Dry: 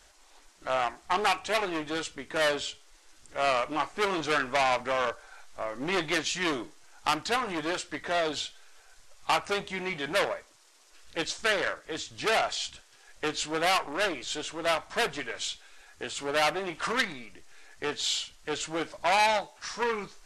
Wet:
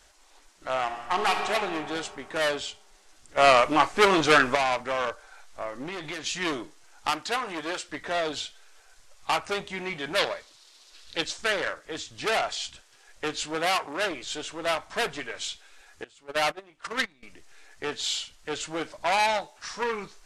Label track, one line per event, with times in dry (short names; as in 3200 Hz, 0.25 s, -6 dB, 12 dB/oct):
0.820000	1.520000	reverb throw, RT60 2.5 s, DRR 3 dB
3.370000	4.550000	gain +8.5 dB
5.690000	6.240000	compressor 4:1, threshold -31 dBFS
7.100000	7.890000	low shelf 190 Hz -10 dB
10.180000	11.210000	bell 4000 Hz +11.5 dB 0.94 oct
13.550000	14.110000	HPF 68 Hz
16.040000	17.230000	gate -30 dBFS, range -20 dB